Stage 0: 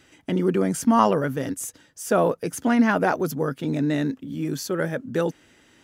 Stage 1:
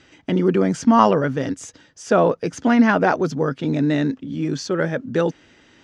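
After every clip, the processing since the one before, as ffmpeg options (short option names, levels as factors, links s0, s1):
-af "lowpass=f=6200:w=0.5412,lowpass=f=6200:w=1.3066,volume=1.58"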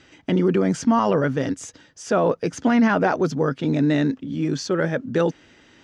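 -af "alimiter=limit=0.299:level=0:latency=1:release=18"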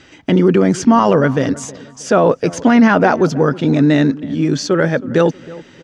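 -filter_complex "[0:a]asplit=2[s0][s1];[s1]adelay=317,lowpass=f=1800:p=1,volume=0.112,asplit=2[s2][s3];[s3]adelay=317,lowpass=f=1800:p=1,volume=0.4,asplit=2[s4][s5];[s5]adelay=317,lowpass=f=1800:p=1,volume=0.4[s6];[s0][s2][s4][s6]amix=inputs=4:normalize=0,volume=2.37"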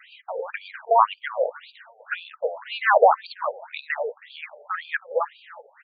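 -af "afftfilt=real='re*between(b*sr/1024,590*pow(3400/590,0.5+0.5*sin(2*PI*1.9*pts/sr))/1.41,590*pow(3400/590,0.5+0.5*sin(2*PI*1.9*pts/sr))*1.41)':imag='im*between(b*sr/1024,590*pow(3400/590,0.5+0.5*sin(2*PI*1.9*pts/sr))/1.41,590*pow(3400/590,0.5+0.5*sin(2*PI*1.9*pts/sr))*1.41)':win_size=1024:overlap=0.75"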